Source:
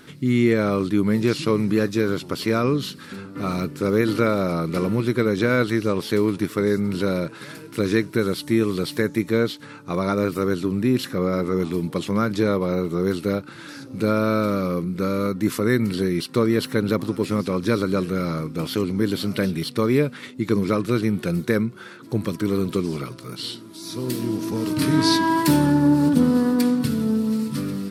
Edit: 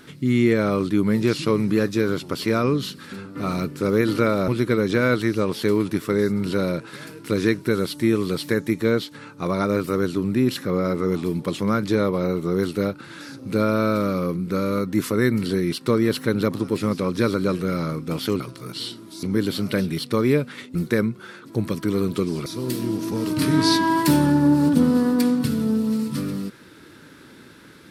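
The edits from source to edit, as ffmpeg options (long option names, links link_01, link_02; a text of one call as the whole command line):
ffmpeg -i in.wav -filter_complex "[0:a]asplit=6[link_01][link_02][link_03][link_04][link_05][link_06];[link_01]atrim=end=4.482[link_07];[link_02]atrim=start=4.958:end=18.882[link_08];[link_03]atrim=start=23.028:end=23.862[link_09];[link_04]atrim=start=18.878:end=20.402[link_10];[link_05]atrim=start=21.318:end=23.032[link_11];[link_06]atrim=start=23.858[link_12];[link_07][link_08]acrossfade=duration=0.004:curve1=hsin:curve2=hsin[link_13];[link_13][link_09]acrossfade=duration=0.004:curve1=hsin:curve2=hsin[link_14];[link_14][link_10]acrossfade=duration=0.004:curve1=hsin:curve2=hsin[link_15];[link_15][link_11]acrossfade=duration=0.004:curve1=hsin:curve2=hsin[link_16];[link_16][link_12]acrossfade=duration=0.004:curve1=hsin:curve2=hsin" out.wav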